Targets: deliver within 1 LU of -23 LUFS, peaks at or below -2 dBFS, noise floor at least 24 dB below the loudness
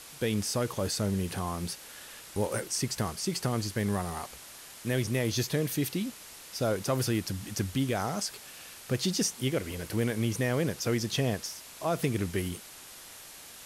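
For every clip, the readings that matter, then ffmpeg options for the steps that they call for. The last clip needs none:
noise floor -48 dBFS; noise floor target -55 dBFS; loudness -31.0 LUFS; peak -16.5 dBFS; loudness target -23.0 LUFS
-> -af "afftdn=nr=7:nf=-48"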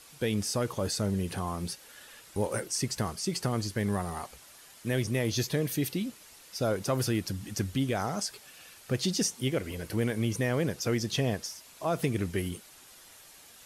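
noise floor -54 dBFS; noise floor target -56 dBFS
-> -af "afftdn=nr=6:nf=-54"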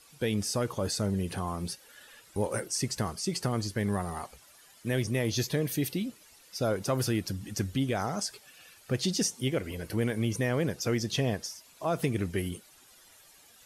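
noise floor -58 dBFS; loudness -31.5 LUFS; peak -16.5 dBFS; loudness target -23.0 LUFS
-> -af "volume=8.5dB"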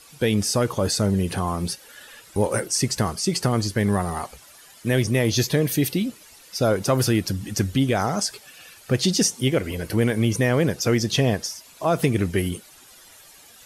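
loudness -23.0 LUFS; peak -8.5 dBFS; noise floor -49 dBFS

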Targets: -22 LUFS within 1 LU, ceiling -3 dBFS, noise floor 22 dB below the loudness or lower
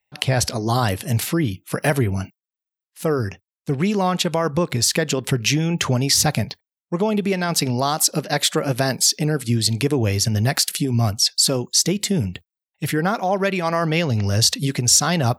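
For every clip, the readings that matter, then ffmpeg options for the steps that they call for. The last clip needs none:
loudness -20.0 LUFS; peak -3.5 dBFS; loudness target -22.0 LUFS
-> -af "volume=-2dB"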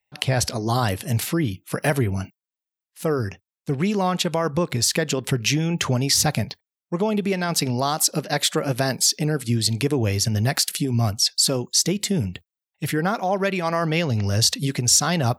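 loudness -22.0 LUFS; peak -5.5 dBFS; noise floor -91 dBFS

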